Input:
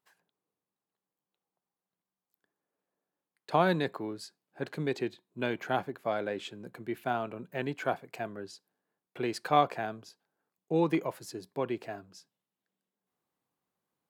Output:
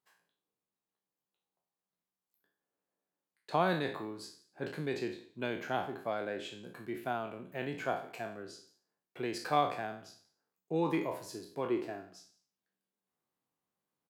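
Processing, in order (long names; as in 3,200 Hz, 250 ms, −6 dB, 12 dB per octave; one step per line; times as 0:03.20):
peak hold with a decay on every bin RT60 0.47 s
0:11.69–0:12.14: parametric band 350 Hz +7 dB 0.76 octaves
single-tap delay 177 ms −23.5 dB
level −5 dB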